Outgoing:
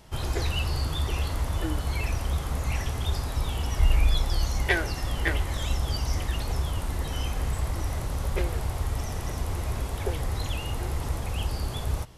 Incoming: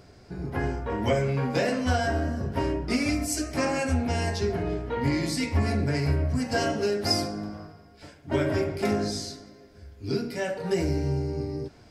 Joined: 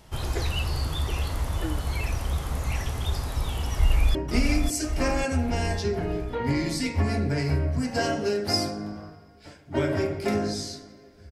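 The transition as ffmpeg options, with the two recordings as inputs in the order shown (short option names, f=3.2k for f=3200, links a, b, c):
-filter_complex "[0:a]apad=whole_dur=11.31,atrim=end=11.31,atrim=end=4.152[a];[1:a]atrim=start=2.718:end=9.88[b];[a][b]acrossfade=d=0.004:c1=hsin:c2=hsin,asplit=2[c][d];[d]afade=t=in:st=3.73:d=0.01,afade=t=out:st=4.15:d=0.01,aecho=0:1:550|1100|1650|2200|2750|3300|3850:0.595662|0.327614|0.180188|0.0991033|0.0545068|0.0299787|0.0164883[e];[c][e]amix=inputs=2:normalize=0"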